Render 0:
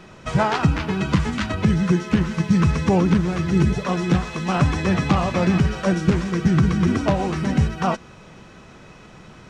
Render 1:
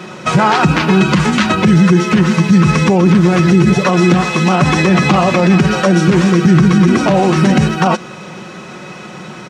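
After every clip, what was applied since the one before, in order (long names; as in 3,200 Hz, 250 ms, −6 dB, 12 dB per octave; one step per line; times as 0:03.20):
high-pass filter 160 Hz 12 dB per octave
comb filter 5.5 ms, depth 48%
boost into a limiter +15 dB
level −1 dB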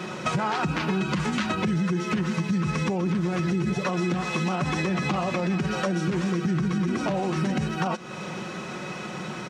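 downward compressor 4 to 1, threshold −21 dBFS, peak gain reduction 13 dB
level −4 dB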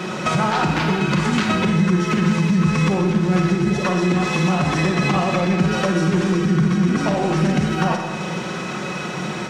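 in parallel at −10 dB: hard clipping −27.5 dBFS, distortion −9 dB
on the sum: four-comb reverb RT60 1.2 s, DRR 3 dB
level +4 dB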